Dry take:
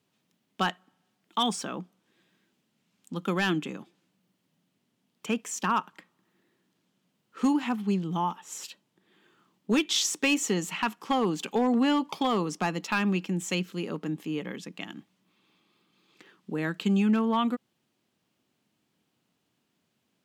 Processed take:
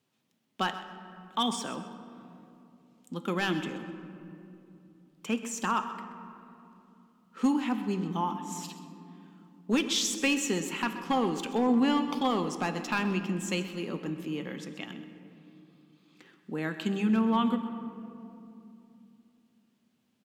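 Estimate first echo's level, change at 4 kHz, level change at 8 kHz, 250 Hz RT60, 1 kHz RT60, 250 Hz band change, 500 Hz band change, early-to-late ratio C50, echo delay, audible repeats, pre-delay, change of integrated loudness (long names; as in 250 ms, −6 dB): −14.5 dB, −2.0 dB, −2.0 dB, 4.0 s, 2.6 s, −1.0 dB, −1.5 dB, 9.0 dB, 129 ms, 2, 4 ms, −2.0 dB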